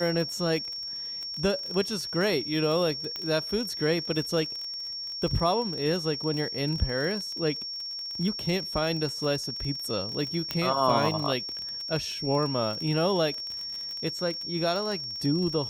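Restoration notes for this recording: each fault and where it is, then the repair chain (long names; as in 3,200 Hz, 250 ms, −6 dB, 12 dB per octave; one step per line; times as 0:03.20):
surface crackle 32 per second −32 dBFS
whistle 5,500 Hz −33 dBFS
0:03.16: click −19 dBFS
0:10.51: click −13 dBFS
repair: click removal
notch filter 5,500 Hz, Q 30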